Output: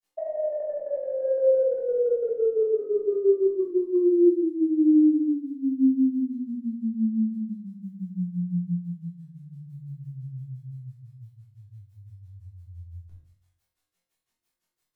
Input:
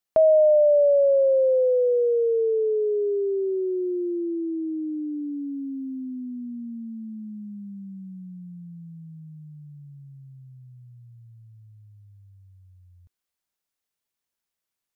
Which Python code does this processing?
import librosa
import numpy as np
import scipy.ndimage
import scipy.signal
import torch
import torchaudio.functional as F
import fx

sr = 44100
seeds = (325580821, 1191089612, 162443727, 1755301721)

y = fx.granulator(x, sr, seeds[0], grain_ms=113.0, per_s=5.9, spray_ms=25.0, spread_st=0)
y = fx.over_compress(y, sr, threshold_db=-27.0, ratio=-0.5)
y = fx.room_flutter(y, sr, wall_m=3.9, rt60_s=0.34)
y = fx.room_shoebox(y, sr, seeds[1], volume_m3=400.0, walls='furnished', distance_m=3.3)